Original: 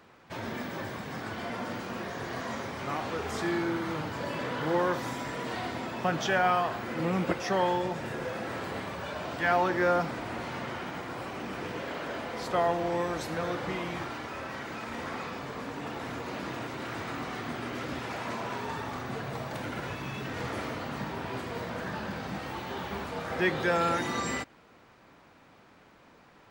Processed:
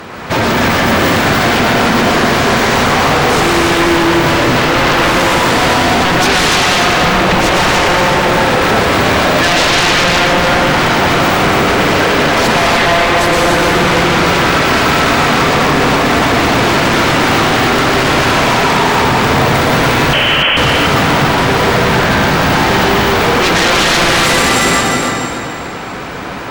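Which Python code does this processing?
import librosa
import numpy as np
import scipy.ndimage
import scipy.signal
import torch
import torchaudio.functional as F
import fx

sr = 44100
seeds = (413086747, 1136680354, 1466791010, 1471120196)

p1 = fx.rev_plate(x, sr, seeds[0], rt60_s=1.9, hf_ratio=1.0, predelay_ms=95, drr_db=-3.5)
p2 = fx.over_compress(p1, sr, threshold_db=-35.0, ratio=-1.0)
p3 = p1 + (p2 * librosa.db_to_amplitude(-2.0))
p4 = fx.fold_sine(p3, sr, drive_db=11, ceiling_db=-13.5)
p5 = fx.freq_invert(p4, sr, carrier_hz=3200, at=(20.13, 20.57))
p6 = fx.echo_feedback(p5, sr, ms=293, feedback_pct=27, wet_db=-5.5)
y = p6 * librosa.db_to_amplitude(5.0)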